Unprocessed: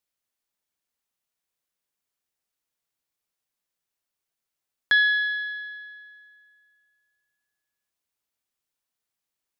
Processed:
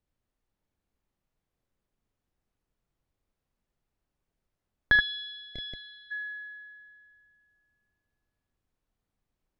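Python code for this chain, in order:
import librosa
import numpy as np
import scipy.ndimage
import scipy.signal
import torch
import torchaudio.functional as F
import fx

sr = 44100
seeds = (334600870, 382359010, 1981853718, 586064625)

y = fx.tilt_eq(x, sr, slope=-4.5)
y = fx.echo_multitap(y, sr, ms=(43, 77, 645, 674, 825), db=(-14.5, -6.0, -11.0, -13.5, -12.0))
y = fx.spec_box(y, sr, start_s=5.0, length_s=1.11, low_hz=720.0, high_hz=2000.0, gain_db=-25)
y = y * librosa.db_to_amplitude(2.0)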